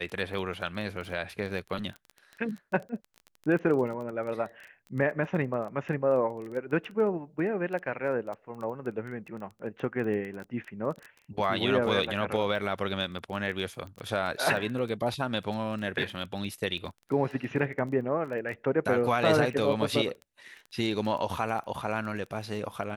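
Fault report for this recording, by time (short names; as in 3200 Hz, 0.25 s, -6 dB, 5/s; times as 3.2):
crackle 14/s -35 dBFS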